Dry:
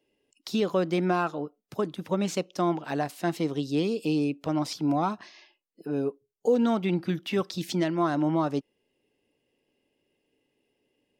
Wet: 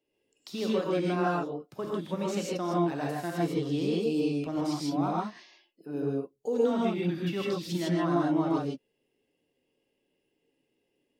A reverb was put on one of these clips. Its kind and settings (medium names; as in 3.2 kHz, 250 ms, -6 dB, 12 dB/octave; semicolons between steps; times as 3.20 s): gated-style reverb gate 180 ms rising, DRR -4 dB; trim -8 dB